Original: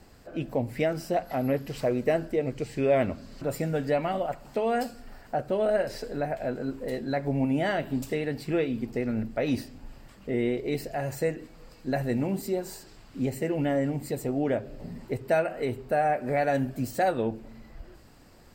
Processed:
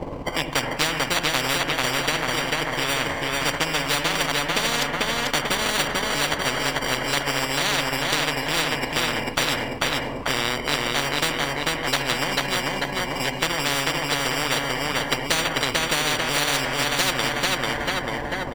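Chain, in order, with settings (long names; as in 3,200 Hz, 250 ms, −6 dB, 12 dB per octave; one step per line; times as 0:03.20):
adaptive Wiener filter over 25 samples
EQ curve with evenly spaced ripples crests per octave 1.1, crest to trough 9 dB
transient designer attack +7 dB, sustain −3 dB
in parallel at −10.5 dB: decimation without filtering 17×
0:01.72–0:03.32: on the sum: tuned comb filter 56 Hz, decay 1.5 s, harmonics all, mix 60%
mid-hump overdrive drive 12 dB, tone 1,800 Hz, clips at −4 dBFS
repeating echo 443 ms, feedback 41%, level −4 dB
on a send at −15 dB: convolution reverb RT60 0.85 s, pre-delay 47 ms
on the sum: every bin compressed towards the loudest bin 10 to 1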